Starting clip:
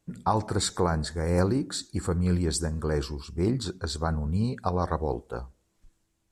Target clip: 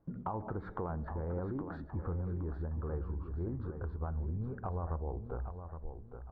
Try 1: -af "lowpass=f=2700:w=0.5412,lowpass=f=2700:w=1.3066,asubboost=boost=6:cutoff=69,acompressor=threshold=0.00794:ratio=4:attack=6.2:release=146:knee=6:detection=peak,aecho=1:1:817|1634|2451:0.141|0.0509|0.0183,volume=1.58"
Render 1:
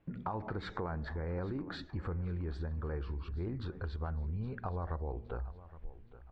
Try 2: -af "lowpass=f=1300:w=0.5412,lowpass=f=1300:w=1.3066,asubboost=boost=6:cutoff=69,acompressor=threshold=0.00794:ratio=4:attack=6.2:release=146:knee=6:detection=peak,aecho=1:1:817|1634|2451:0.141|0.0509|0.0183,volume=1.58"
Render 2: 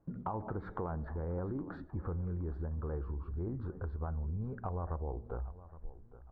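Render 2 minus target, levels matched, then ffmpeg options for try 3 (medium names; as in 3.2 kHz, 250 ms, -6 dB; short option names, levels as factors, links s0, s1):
echo-to-direct -8 dB
-af "lowpass=f=1300:w=0.5412,lowpass=f=1300:w=1.3066,asubboost=boost=6:cutoff=69,acompressor=threshold=0.00794:ratio=4:attack=6.2:release=146:knee=6:detection=peak,aecho=1:1:817|1634|2451|3268:0.355|0.128|0.046|0.0166,volume=1.58"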